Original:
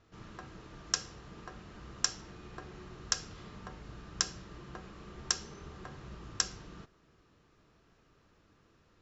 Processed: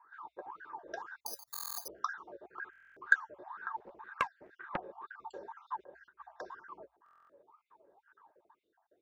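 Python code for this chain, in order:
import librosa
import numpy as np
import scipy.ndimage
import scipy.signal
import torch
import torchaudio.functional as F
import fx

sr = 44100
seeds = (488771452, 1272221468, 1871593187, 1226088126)

y = fx.spec_dropout(x, sr, seeds[0], share_pct=48)
y = fx.peak_eq(y, sr, hz=61.0, db=11.5, octaves=0.21)
y = fx.over_compress(y, sr, threshold_db=-54.0, ratio=-1.0, at=(5.67, 6.2))
y = fx.wah_lfo(y, sr, hz=2.0, low_hz=550.0, high_hz=1500.0, q=20.0)
y = fx.small_body(y, sr, hz=(380.0, 890.0, 1600.0, 3600.0), ring_ms=20, db=14)
y = fx.resample_bad(y, sr, factor=8, down='none', up='zero_stuff', at=(1.26, 1.88))
y = fx.buffer_glitch(y, sr, at_s=(1.52, 2.71, 7.04), block=1024, repeats=10)
y = fx.doppler_dist(y, sr, depth_ms=0.54, at=(3.77, 4.77))
y = F.gain(torch.from_numpy(y), 16.0).numpy()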